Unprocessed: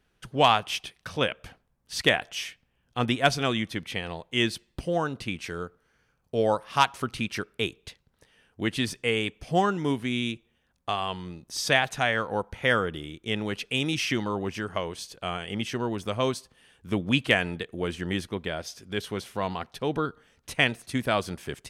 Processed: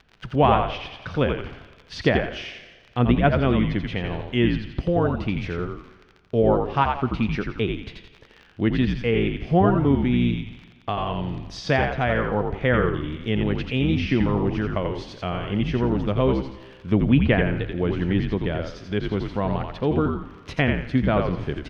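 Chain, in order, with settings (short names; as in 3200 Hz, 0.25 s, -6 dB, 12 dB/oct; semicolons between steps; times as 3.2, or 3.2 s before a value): treble ducked by the level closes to 2500 Hz, closed at -19 dBFS; low shelf 460 Hz +10 dB; crackle 28/s -34 dBFS; air absorption 250 m; frequency-shifting echo 85 ms, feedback 33%, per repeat -64 Hz, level -4.5 dB; Schroeder reverb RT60 1.4 s, combs from 33 ms, DRR 17 dB; mismatched tape noise reduction encoder only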